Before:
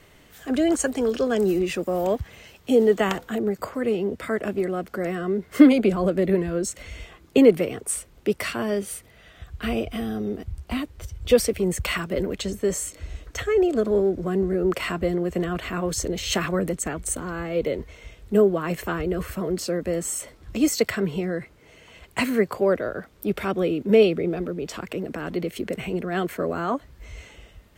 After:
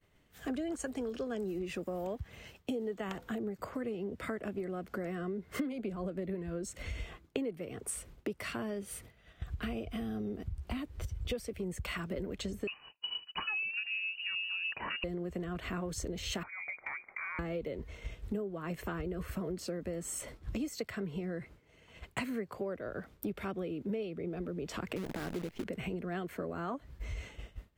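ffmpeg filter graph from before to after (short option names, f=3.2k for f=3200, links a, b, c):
-filter_complex "[0:a]asettb=1/sr,asplit=3[a][b][c];[a]atrim=end=12.674[d];[b]atrim=start=12.67:end=15.04,asetpts=PTS-STARTPTS,afade=t=in:d=0.004:c=qsin,afade=t=out:st=2.366:d=0.004:c=qsin,agate=range=-33dB:threshold=-34dB:ratio=3:release=100:detection=peak,lowpass=f=2.6k:t=q:w=0.5098,lowpass=f=2.6k:t=q:w=0.6013,lowpass=f=2.6k:t=q:w=0.9,lowpass=f=2.6k:t=q:w=2.563,afreqshift=-3000[e];[c]atrim=start=15.036[f];[d][e]acrossfade=d=0.004:c1=hsin:c2=qsin[g];[g][f]acrossfade=d=0.004:c1=qsin:c2=hsin,asettb=1/sr,asplit=3[h][i][j];[h]atrim=end=16.434[k];[i]atrim=start=16.43:end=17.39,asetpts=PTS-STARTPTS,afade=t=in:d=0.004:c=qsin,afade=t=out:st=0.956:d=0.004:c=qsin,highpass=f=210:w=0.5412,highpass=f=210:w=1.3066,lowpass=f=2.2k:t=q:w=0.5098,lowpass=f=2.2k:t=q:w=0.6013,lowpass=f=2.2k:t=q:w=0.9,lowpass=f=2.2k:t=q:w=2.563,afreqshift=-2600,acompressor=threshold=-34dB:ratio=8:attack=3.2:release=140:knee=1:detection=peak[l];[j]atrim=start=17.386[m];[k][l]acrossfade=d=0.004:c1=hsin:c2=qsin[n];[n][m]acrossfade=d=0.004:c1=qsin:c2=hsin,asettb=1/sr,asplit=3[o][p][q];[o]atrim=end=24.964[r];[p]atrim=start=24.96:end=25.64,asetpts=PTS-STARTPTS,afade=t=in:d=0.004:c=qsin,afade=t=out:st=0.676:d=0.004:c=qsin,lowpass=2.9k,equalizer=f=1.1k:w=1.7:g=-4.5,acrusher=bits=6:dc=4:mix=0:aa=0.000001[s];[q]atrim=start=25.636[t];[r][s]acrossfade=d=0.004:c1=hsin:c2=qsin[u];[u][t]acrossfade=d=0.004:c1=qsin:c2=hsin,agate=range=-33dB:threshold=-41dB:ratio=3:detection=peak,bass=f=250:g=4,treble=f=4k:g=-3,acompressor=threshold=-35dB:ratio=8"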